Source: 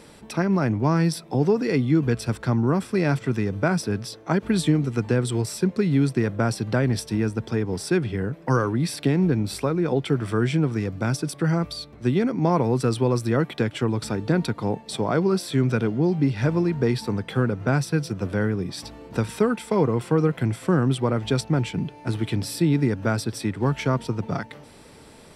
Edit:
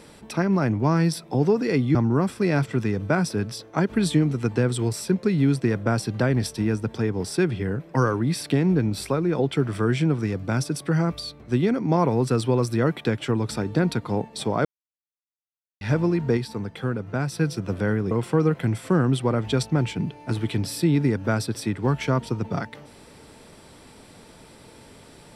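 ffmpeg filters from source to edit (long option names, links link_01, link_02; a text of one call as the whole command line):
ffmpeg -i in.wav -filter_complex "[0:a]asplit=7[link_01][link_02][link_03][link_04][link_05][link_06][link_07];[link_01]atrim=end=1.952[link_08];[link_02]atrim=start=2.478:end=15.18,asetpts=PTS-STARTPTS,afade=type=out:start_time=12.698:duration=0.004:curve=hsin[link_09];[link_03]atrim=start=15.18:end=16.34,asetpts=PTS-STARTPTS,volume=0[link_10];[link_04]atrim=start=16.34:end=16.902,asetpts=PTS-STARTPTS,afade=type=in:duration=0.004:curve=hsin[link_11];[link_05]atrim=start=16.898:end=17.852,asetpts=PTS-STARTPTS,volume=-4.5dB[link_12];[link_06]atrim=start=17.848:end=18.642[link_13];[link_07]atrim=start=19.888[link_14];[link_09][link_10][link_11]concat=n=3:v=0:a=1[link_15];[link_08][link_15]acrossfade=duration=0.004:curve1=hsin:curve2=hsin[link_16];[link_16][link_12]acrossfade=duration=0.004:curve1=hsin:curve2=hsin[link_17];[link_17][link_13]acrossfade=duration=0.004:curve1=hsin:curve2=hsin[link_18];[link_18][link_14]acrossfade=duration=0.004:curve1=hsin:curve2=hsin" out.wav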